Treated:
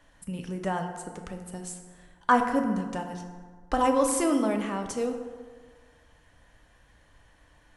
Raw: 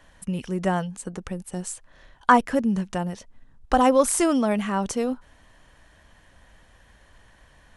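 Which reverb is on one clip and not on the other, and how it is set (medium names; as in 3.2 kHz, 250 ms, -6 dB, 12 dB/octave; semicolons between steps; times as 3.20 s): FDN reverb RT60 1.6 s, low-frequency decay 0.9×, high-frequency decay 0.5×, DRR 4 dB; trim -6 dB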